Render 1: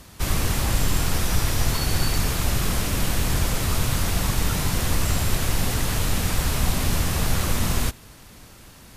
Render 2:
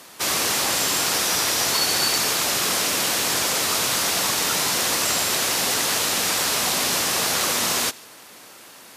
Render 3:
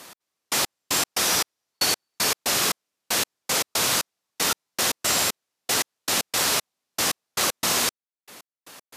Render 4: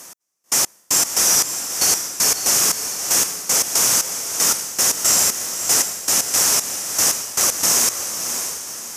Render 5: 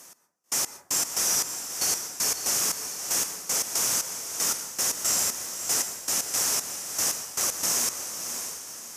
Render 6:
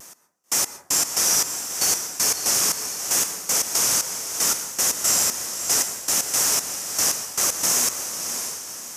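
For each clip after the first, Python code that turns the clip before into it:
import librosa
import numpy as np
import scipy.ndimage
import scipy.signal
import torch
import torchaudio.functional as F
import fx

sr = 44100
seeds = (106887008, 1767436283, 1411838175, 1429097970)

y1 = scipy.signal.sosfilt(scipy.signal.butter(2, 390.0, 'highpass', fs=sr, output='sos'), x)
y1 = fx.dynamic_eq(y1, sr, hz=5300.0, q=0.87, threshold_db=-44.0, ratio=4.0, max_db=5)
y1 = y1 * librosa.db_to_amplitude(5.0)
y2 = fx.step_gate(y1, sr, bpm=116, pattern='x...x..x.x', floor_db=-60.0, edge_ms=4.5)
y3 = fx.high_shelf_res(y2, sr, hz=4900.0, db=6.0, q=3.0)
y3 = fx.echo_diffused(y3, sr, ms=597, feedback_pct=43, wet_db=-7.0)
y4 = fx.rev_plate(y3, sr, seeds[0], rt60_s=0.55, hf_ratio=0.35, predelay_ms=110, drr_db=14.0)
y4 = y4 * librosa.db_to_amplitude(-9.0)
y5 = fx.vibrato(y4, sr, rate_hz=0.68, depth_cents=22.0)
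y5 = y5 * librosa.db_to_amplitude(5.0)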